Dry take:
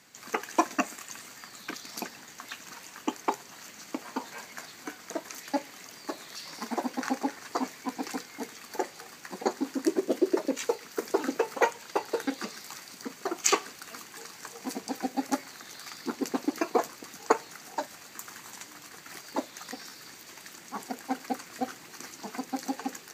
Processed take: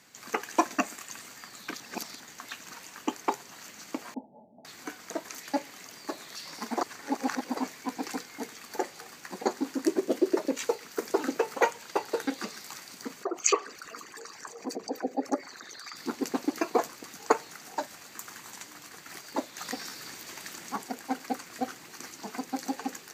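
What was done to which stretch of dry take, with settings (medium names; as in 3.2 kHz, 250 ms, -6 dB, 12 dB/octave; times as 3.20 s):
1.80–2.20 s: reverse
4.14–4.65 s: rippled Chebyshev low-pass 880 Hz, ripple 9 dB
6.81–7.57 s: reverse
13.23–15.96 s: resonances exaggerated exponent 2
19.58–20.76 s: gain +4.5 dB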